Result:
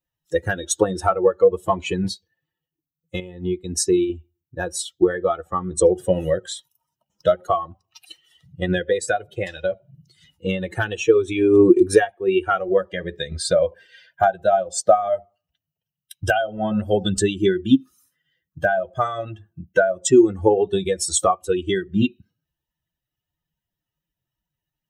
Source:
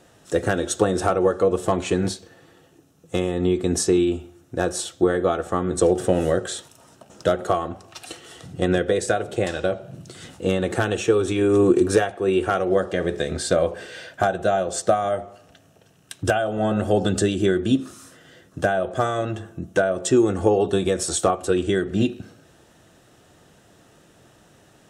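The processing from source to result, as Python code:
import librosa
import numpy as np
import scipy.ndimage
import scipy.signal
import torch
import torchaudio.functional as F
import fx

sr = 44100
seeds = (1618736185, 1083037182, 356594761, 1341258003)

y = fx.bin_expand(x, sr, power=2.0)
y = fx.dynamic_eq(y, sr, hz=120.0, q=1.2, threshold_db=-43.0, ratio=4.0, max_db=-5)
y = fx.upward_expand(y, sr, threshold_db=-35.0, expansion=1.5, at=(3.2, 4.1))
y = y * librosa.db_to_amplitude(7.5)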